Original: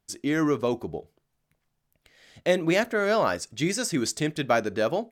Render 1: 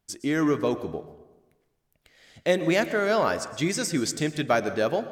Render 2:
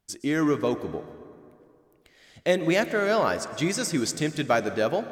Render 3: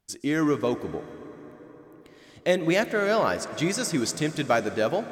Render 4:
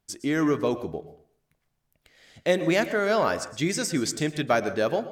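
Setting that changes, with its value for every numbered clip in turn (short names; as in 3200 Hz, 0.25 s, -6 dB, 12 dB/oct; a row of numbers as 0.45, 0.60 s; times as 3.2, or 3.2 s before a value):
plate-style reverb, RT60: 1.1, 2.4, 5.1, 0.52 s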